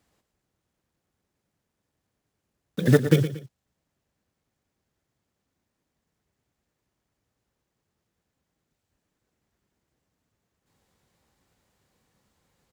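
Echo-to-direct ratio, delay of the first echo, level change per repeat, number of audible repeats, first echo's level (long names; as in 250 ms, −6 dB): −11.0 dB, 116 ms, −9.0 dB, 2, −11.5 dB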